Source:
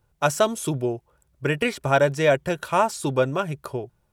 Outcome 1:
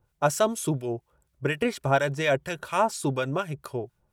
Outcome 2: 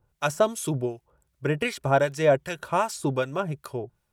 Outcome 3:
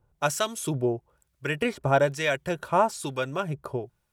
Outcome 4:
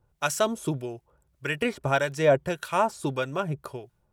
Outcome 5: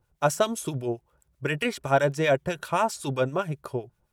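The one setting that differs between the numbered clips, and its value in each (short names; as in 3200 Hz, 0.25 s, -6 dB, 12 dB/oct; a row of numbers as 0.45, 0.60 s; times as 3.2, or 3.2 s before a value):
harmonic tremolo, rate: 4.2, 2.6, 1.1, 1.7, 7.7 Hz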